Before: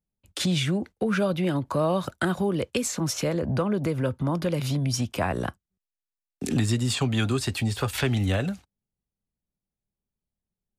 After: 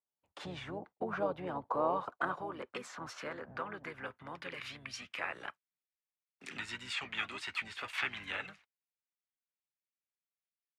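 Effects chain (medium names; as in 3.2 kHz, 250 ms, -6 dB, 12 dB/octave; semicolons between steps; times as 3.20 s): band-pass sweep 880 Hz -> 2.2 kHz, 1.53–4.54 s; harmony voices -12 st -12 dB, -4 st -7 dB; trim -1.5 dB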